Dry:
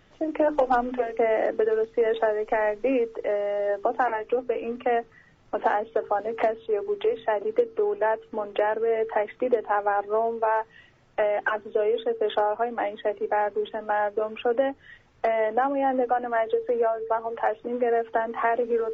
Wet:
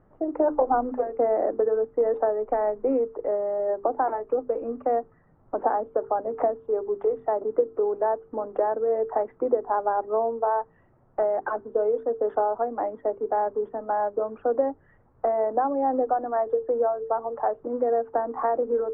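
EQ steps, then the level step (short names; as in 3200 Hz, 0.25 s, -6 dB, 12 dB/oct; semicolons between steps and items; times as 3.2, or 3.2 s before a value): LPF 1200 Hz 24 dB/oct; 0.0 dB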